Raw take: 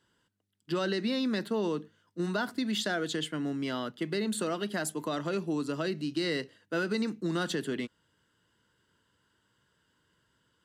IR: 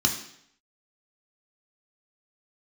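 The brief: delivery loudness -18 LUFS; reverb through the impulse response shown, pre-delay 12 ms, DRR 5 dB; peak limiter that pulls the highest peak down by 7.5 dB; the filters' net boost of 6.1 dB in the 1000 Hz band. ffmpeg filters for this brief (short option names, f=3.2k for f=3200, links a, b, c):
-filter_complex "[0:a]equalizer=f=1k:t=o:g=8.5,alimiter=limit=-22.5dB:level=0:latency=1,asplit=2[a][b];[1:a]atrim=start_sample=2205,adelay=12[c];[b][c]afir=irnorm=-1:irlink=0,volume=-15.5dB[d];[a][d]amix=inputs=2:normalize=0,volume=12dB"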